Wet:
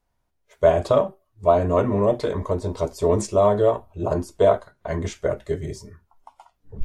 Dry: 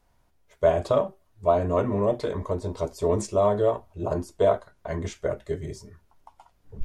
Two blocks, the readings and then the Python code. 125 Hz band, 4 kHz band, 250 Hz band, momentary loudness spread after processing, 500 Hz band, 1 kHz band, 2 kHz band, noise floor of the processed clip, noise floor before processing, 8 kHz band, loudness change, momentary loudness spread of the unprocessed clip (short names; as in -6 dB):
+4.0 dB, +4.0 dB, +4.0 dB, 11 LU, +4.0 dB, +4.0 dB, +4.0 dB, -72 dBFS, -65 dBFS, +4.0 dB, +4.0 dB, 11 LU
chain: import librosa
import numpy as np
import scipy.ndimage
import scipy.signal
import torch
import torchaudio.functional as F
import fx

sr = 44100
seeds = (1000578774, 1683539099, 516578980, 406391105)

y = fx.noise_reduce_blind(x, sr, reduce_db=12)
y = y * librosa.db_to_amplitude(4.0)